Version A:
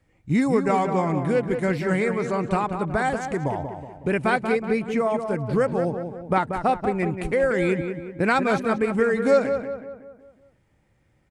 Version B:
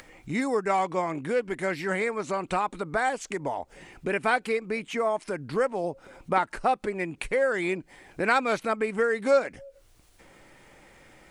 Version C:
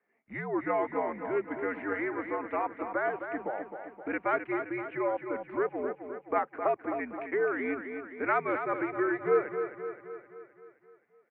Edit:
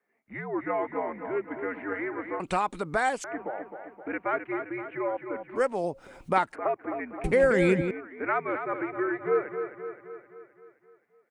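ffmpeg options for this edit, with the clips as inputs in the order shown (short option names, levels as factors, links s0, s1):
-filter_complex "[1:a]asplit=2[s0][s1];[2:a]asplit=4[s2][s3][s4][s5];[s2]atrim=end=2.402[s6];[s0]atrim=start=2.398:end=3.242[s7];[s3]atrim=start=3.238:end=5.61[s8];[s1]atrim=start=5.55:end=6.56[s9];[s4]atrim=start=6.5:end=7.242[s10];[0:a]atrim=start=7.238:end=7.912[s11];[s5]atrim=start=7.908[s12];[s6][s7]acrossfade=d=0.004:c1=hsin:c2=hsin[s13];[s13][s8]acrossfade=d=0.004:c1=hsin:c2=hsin[s14];[s14][s9]acrossfade=d=0.06:c1=tri:c2=tri[s15];[s15][s10]acrossfade=d=0.06:c1=tri:c2=tri[s16];[s16][s11]acrossfade=d=0.004:c1=hsin:c2=hsin[s17];[s17][s12]acrossfade=d=0.004:c1=hsin:c2=hsin"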